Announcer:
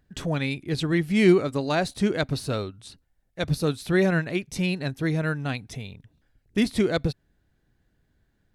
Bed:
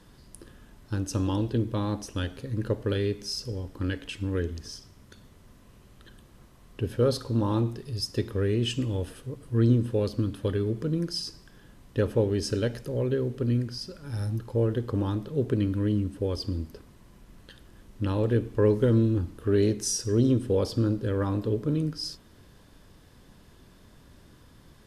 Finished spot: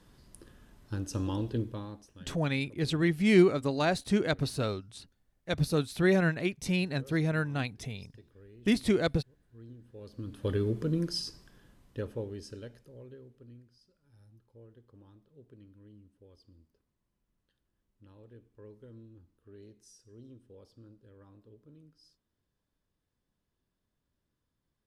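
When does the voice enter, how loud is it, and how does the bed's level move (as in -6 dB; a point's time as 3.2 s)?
2.10 s, -3.5 dB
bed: 1.6 s -5.5 dB
2.39 s -28.5 dB
9.81 s -28.5 dB
10.52 s -2 dB
11.15 s -2 dB
13.76 s -29.5 dB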